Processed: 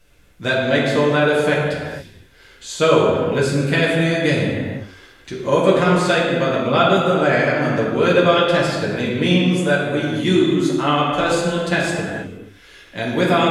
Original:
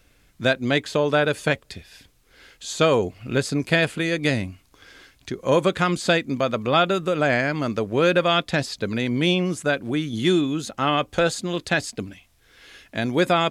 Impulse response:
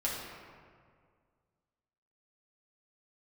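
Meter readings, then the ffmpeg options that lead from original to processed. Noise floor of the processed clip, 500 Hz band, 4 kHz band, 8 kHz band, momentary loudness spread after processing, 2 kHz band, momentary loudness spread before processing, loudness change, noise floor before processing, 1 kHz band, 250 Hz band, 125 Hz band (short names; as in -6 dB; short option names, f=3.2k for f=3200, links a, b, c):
-48 dBFS, +5.5 dB, +2.5 dB, +2.0 dB, 12 LU, +4.0 dB, 9 LU, +5.0 dB, -60 dBFS, +5.0 dB, +5.0 dB, +5.5 dB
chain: -filter_complex "[1:a]atrim=start_sample=2205,afade=t=out:st=0.4:d=0.01,atrim=end_sample=18081,asetrate=31752,aresample=44100[a];[0:a][a]afir=irnorm=-1:irlink=0,volume=-3dB"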